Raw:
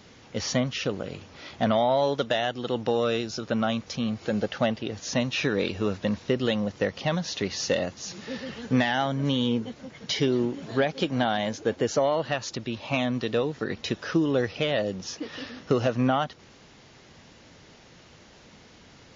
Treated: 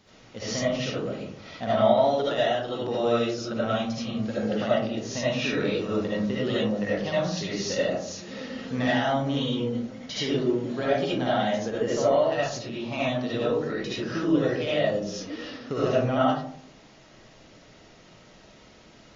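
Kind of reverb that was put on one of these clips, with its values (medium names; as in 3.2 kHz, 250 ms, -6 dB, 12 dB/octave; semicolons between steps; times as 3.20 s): algorithmic reverb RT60 0.64 s, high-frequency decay 0.3×, pre-delay 35 ms, DRR -8.5 dB; trim -9 dB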